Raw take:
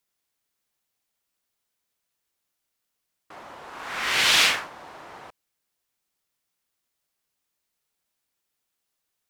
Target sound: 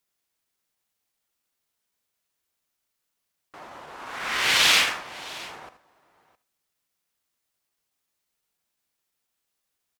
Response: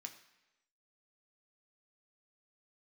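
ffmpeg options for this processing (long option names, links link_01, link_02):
-filter_complex "[0:a]atempo=0.93,aecho=1:1:80|663:0.2|0.1,asplit=2[link_01][link_02];[1:a]atrim=start_sample=2205,adelay=68[link_03];[link_02][link_03]afir=irnorm=-1:irlink=0,volume=-11.5dB[link_04];[link_01][link_04]amix=inputs=2:normalize=0"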